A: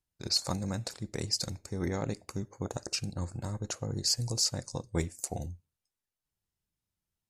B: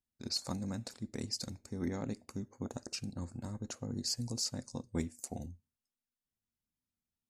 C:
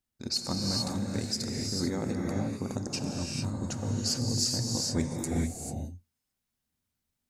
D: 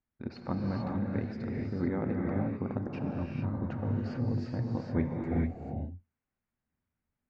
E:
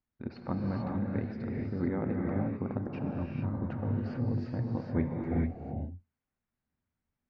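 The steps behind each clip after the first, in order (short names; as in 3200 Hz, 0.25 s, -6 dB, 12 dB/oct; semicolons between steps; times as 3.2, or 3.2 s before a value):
bell 240 Hz +15 dB 0.32 oct; gain -7.5 dB
non-linear reverb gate 0.47 s rising, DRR -1.5 dB; gain +5 dB
LPF 2200 Hz 24 dB/oct
air absorption 130 m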